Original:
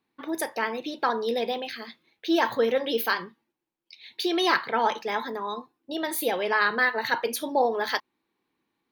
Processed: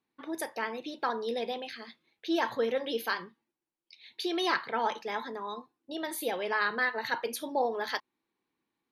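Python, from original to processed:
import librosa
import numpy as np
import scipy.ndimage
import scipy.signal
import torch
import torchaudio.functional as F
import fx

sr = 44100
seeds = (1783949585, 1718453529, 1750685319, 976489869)

y = fx.brickwall_lowpass(x, sr, high_hz=13000.0)
y = y * librosa.db_to_amplitude(-6.0)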